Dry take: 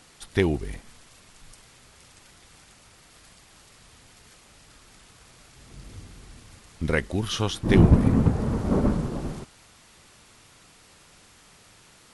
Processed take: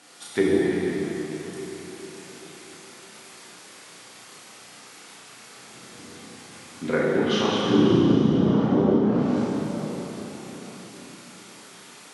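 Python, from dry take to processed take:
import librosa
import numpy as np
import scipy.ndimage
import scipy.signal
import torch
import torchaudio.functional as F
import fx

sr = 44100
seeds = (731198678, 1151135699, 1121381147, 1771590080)

y = fx.doubler(x, sr, ms=33.0, db=-2.0)
y = fx.env_lowpass_down(y, sr, base_hz=310.0, full_db=-14.5)
y = scipy.signal.sosfilt(scipy.signal.bessel(4, 240.0, 'highpass', norm='mag', fs=sr, output='sos'), y)
y = fx.rev_plate(y, sr, seeds[0], rt60_s=4.6, hf_ratio=0.8, predelay_ms=0, drr_db=-5.5)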